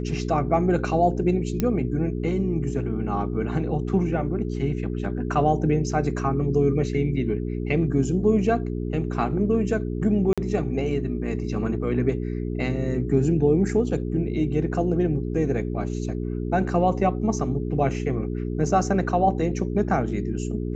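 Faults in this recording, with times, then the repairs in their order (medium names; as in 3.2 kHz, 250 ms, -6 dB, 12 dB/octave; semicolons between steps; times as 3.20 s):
hum 60 Hz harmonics 7 -28 dBFS
1.60 s: pop -10 dBFS
10.33–10.38 s: dropout 46 ms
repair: de-click; de-hum 60 Hz, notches 7; interpolate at 10.33 s, 46 ms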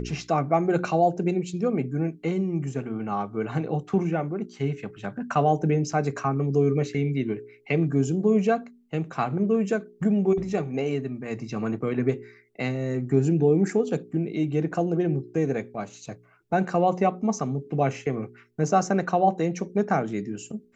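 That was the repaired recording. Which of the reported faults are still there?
nothing left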